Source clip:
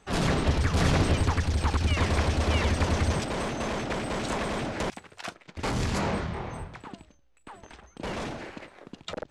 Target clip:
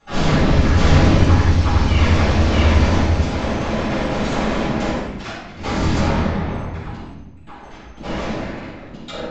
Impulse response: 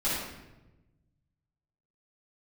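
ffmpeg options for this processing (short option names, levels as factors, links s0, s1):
-filter_complex "[0:a]asettb=1/sr,asplit=3[s0][s1][s2];[s0]atrim=end=2.964[s3];[s1]atrim=start=2.96:end=3.8,asetpts=PTS-STARTPTS,afade=t=in:d=0.004:c=qsin,afade=t=out:st=0.836:d=0.004:c=qsin,acompressor=threshold=0.0398:ratio=3[s4];[s2]atrim=start=3.796[s5];[s3][s4]acrossfade=d=0.004:c1=hsin:c2=qsin[s6];[s6][s5]acrossfade=d=0.004:c1=qsin:c2=hsin[s7];[1:a]atrim=start_sample=2205[s8];[s7][s8]afir=irnorm=-1:irlink=0,aresample=16000,aresample=44100,volume=0.841"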